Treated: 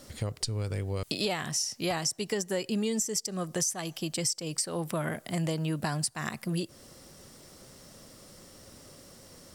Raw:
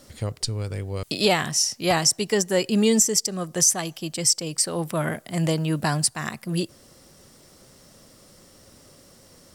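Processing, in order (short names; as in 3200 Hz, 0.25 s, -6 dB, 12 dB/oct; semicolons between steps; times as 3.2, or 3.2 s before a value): compressor 4:1, threshold -29 dBFS, peak gain reduction 12.5 dB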